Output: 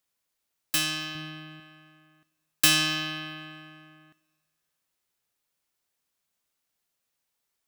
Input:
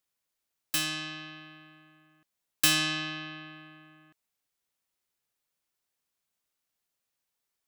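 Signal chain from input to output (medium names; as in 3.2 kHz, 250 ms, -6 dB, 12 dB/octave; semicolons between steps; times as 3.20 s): 1.15–1.60 s: bass shelf 200 Hz +11.5 dB; two-slope reverb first 0.99 s, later 2.5 s, DRR 15 dB; trim +3 dB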